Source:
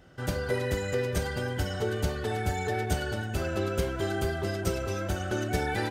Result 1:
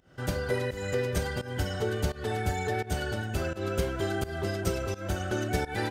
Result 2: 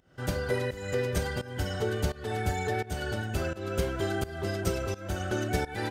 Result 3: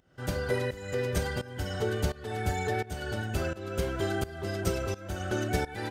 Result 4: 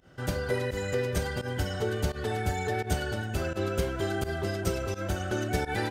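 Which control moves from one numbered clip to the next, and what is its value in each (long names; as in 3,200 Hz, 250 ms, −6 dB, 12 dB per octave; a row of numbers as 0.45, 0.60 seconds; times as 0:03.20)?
fake sidechain pumping, release: 207, 337, 502, 96 milliseconds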